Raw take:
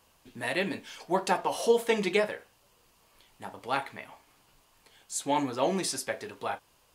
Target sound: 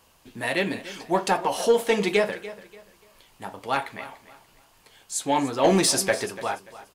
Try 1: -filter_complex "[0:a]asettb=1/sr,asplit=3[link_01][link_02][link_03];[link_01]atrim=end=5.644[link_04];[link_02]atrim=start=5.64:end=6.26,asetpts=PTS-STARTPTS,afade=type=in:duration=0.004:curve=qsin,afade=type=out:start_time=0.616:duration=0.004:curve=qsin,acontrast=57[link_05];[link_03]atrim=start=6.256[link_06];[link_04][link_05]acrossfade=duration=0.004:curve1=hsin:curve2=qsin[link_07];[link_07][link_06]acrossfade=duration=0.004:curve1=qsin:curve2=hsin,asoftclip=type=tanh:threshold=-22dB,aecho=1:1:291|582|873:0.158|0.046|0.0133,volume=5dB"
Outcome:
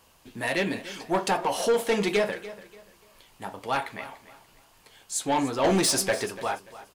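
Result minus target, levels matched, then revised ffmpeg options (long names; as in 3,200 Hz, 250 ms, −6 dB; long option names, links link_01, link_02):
soft clipping: distortion +10 dB
-filter_complex "[0:a]asettb=1/sr,asplit=3[link_01][link_02][link_03];[link_01]atrim=end=5.644[link_04];[link_02]atrim=start=5.64:end=6.26,asetpts=PTS-STARTPTS,afade=type=in:duration=0.004:curve=qsin,afade=type=out:start_time=0.616:duration=0.004:curve=qsin,acontrast=57[link_05];[link_03]atrim=start=6.256[link_06];[link_04][link_05]acrossfade=duration=0.004:curve1=hsin:curve2=qsin[link_07];[link_07][link_06]acrossfade=duration=0.004:curve1=qsin:curve2=hsin,asoftclip=type=tanh:threshold=-13.5dB,aecho=1:1:291|582|873:0.158|0.046|0.0133,volume=5dB"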